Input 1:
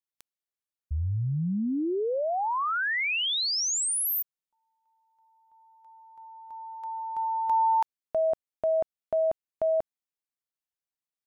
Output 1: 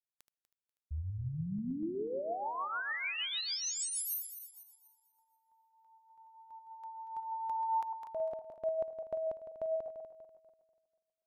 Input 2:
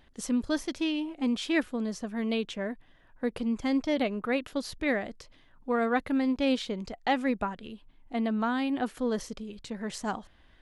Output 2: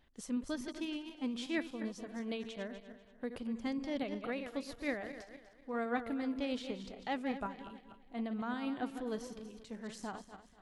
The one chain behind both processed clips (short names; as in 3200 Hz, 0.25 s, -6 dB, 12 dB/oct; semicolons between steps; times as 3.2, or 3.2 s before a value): regenerating reverse delay 0.122 s, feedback 59%, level -9 dB; tremolo triangle 6.6 Hz, depth 45%; gain -8 dB